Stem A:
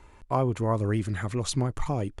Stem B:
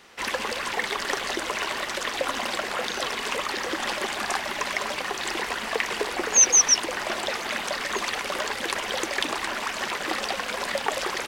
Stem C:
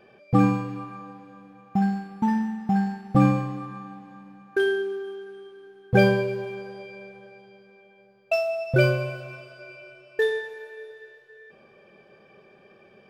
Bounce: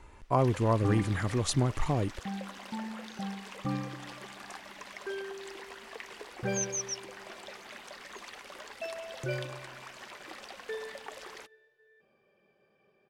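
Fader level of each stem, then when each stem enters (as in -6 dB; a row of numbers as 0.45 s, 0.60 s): -0.5 dB, -18.0 dB, -15.5 dB; 0.00 s, 0.20 s, 0.50 s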